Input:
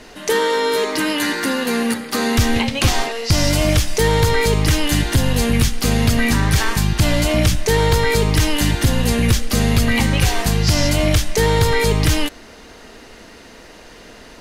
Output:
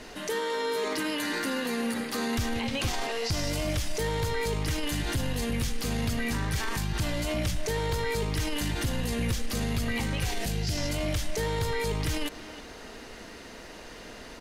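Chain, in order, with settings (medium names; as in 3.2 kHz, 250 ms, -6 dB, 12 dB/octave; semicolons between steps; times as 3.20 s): 10.31–10.78 s: peaking EQ 1.1 kHz -13.5 dB 0.71 oct; peak limiter -18.5 dBFS, peak gain reduction 12 dB; speakerphone echo 320 ms, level -11 dB; trim -3.5 dB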